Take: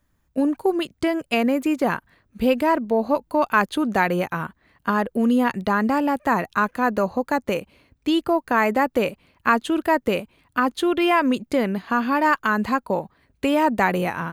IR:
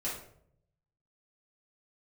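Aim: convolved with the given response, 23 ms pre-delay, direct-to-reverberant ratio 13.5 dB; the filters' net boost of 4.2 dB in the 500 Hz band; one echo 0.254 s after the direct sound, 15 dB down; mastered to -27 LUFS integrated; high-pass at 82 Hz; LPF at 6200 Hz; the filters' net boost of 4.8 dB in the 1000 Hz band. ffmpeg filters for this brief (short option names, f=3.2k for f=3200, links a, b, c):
-filter_complex "[0:a]highpass=82,lowpass=6.2k,equalizer=f=500:t=o:g=4,equalizer=f=1k:t=o:g=4.5,aecho=1:1:254:0.178,asplit=2[a][b];[1:a]atrim=start_sample=2205,adelay=23[c];[b][c]afir=irnorm=-1:irlink=0,volume=-17.5dB[d];[a][d]amix=inputs=2:normalize=0,volume=-8.5dB"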